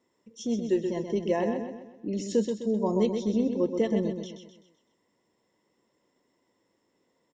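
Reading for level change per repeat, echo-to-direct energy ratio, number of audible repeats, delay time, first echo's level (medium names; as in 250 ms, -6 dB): -7.0 dB, -5.5 dB, 4, 128 ms, -6.5 dB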